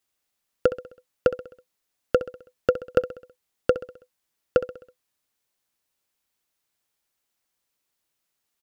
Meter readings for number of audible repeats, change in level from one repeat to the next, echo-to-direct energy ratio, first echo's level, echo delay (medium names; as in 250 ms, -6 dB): 4, -6.0 dB, -12.5 dB, -14.0 dB, 65 ms